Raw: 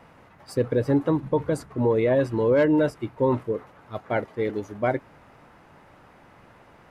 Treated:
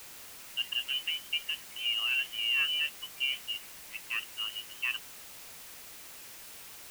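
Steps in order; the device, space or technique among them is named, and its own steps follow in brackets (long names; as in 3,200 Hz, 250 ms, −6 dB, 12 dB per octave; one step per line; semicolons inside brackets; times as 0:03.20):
scrambled radio voice (band-pass filter 350–2,600 Hz; voice inversion scrambler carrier 3,300 Hz; white noise bed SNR 12 dB)
level −8.5 dB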